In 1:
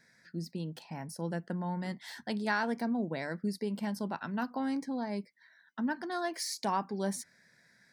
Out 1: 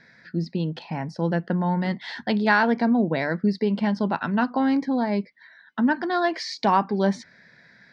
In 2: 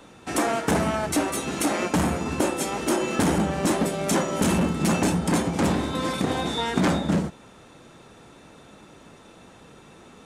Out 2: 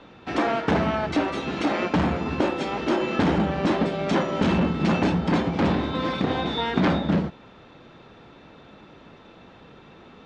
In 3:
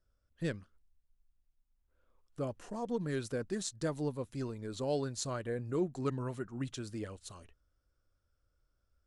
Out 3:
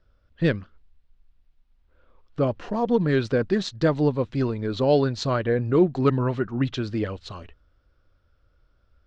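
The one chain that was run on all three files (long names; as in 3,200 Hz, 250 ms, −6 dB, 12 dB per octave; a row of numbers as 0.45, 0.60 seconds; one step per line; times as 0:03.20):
low-pass filter 4,300 Hz 24 dB per octave
loudness normalisation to −24 LKFS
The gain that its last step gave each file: +12.0, +0.5, +14.0 decibels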